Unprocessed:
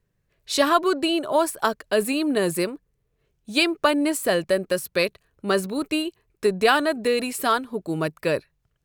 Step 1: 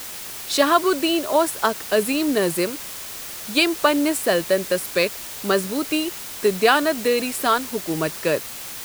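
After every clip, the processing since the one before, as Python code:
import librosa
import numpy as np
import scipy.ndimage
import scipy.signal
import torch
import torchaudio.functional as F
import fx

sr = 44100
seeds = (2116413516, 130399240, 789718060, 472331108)

y = scipy.signal.sosfilt(scipy.signal.butter(2, 150.0, 'highpass', fs=sr, output='sos'), x)
y = fx.quant_dither(y, sr, seeds[0], bits=6, dither='triangular')
y = y * 10.0 ** (2.0 / 20.0)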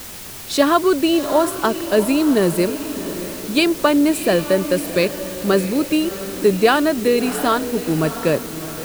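y = fx.low_shelf(x, sr, hz=360.0, db=11.5)
y = fx.echo_diffused(y, sr, ms=683, feedback_pct=43, wet_db=-11.5)
y = y * 10.0 ** (-1.0 / 20.0)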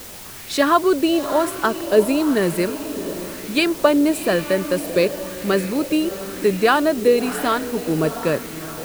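y = fx.bell_lfo(x, sr, hz=1.0, low_hz=440.0, high_hz=2200.0, db=6)
y = y * 10.0 ** (-3.0 / 20.0)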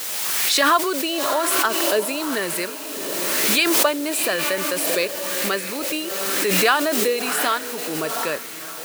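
y = fx.highpass(x, sr, hz=1400.0, slope=6)
y = fx.pre_swell(y, sr, db_per_s=21.0)
y = y * 10.0 ** (2.5 / 20.0)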